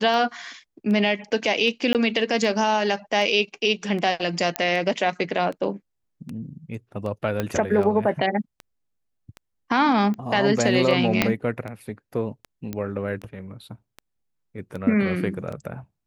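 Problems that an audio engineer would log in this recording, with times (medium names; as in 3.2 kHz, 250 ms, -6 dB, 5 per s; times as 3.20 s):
tick 78 rpm
1.93–1.95 s: dropout 18 ms
4.56 s: pop -6 dBFS
7.40 s: pop -11 dBFS
11.22 s: pop -3 dBFS
12.73 s: pop -16 dBFS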